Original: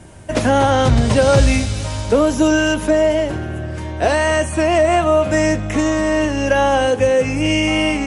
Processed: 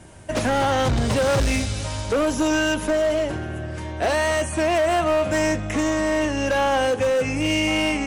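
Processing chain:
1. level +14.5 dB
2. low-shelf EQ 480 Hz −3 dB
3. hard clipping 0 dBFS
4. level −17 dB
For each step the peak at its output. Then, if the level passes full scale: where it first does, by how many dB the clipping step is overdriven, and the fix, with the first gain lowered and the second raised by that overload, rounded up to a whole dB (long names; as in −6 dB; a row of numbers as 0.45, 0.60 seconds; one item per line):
+9.5, +9.0, 0.0, −17.0 dBFS
step 1, 9.0 dB
step 1 +5.5 dB, step 4 −8 dB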